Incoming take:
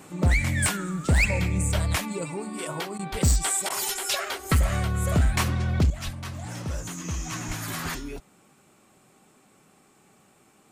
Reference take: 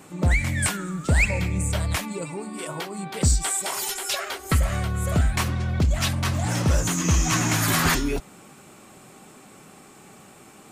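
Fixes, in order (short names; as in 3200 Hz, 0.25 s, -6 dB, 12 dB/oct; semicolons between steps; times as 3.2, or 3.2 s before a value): clip repair -15.5 dBFS; de-plosive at 1.74/3.11/6.04/7.47; interpolate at 2.98/3.69, 11 ms; gain correction +11 dB, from 5.9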